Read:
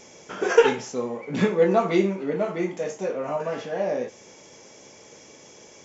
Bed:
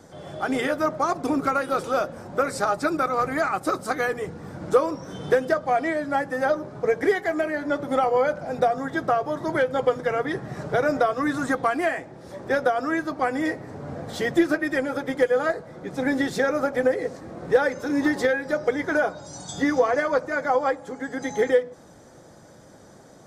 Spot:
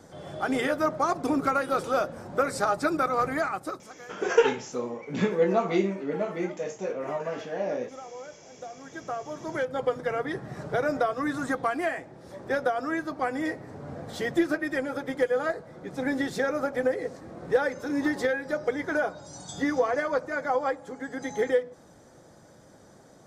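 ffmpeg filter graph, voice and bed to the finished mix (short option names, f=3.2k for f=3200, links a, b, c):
-filter_complex "[0:a]adelay=3800,volume=-4dB[a];[1:a]volume=14.5dB,afade=t=out:st=3.28:d=0.62:silence=0.112202,afade=t=in:st=8.64:d=1.39:silence=0.149624[b];[a][b]amix=inputs=2:normalize=0"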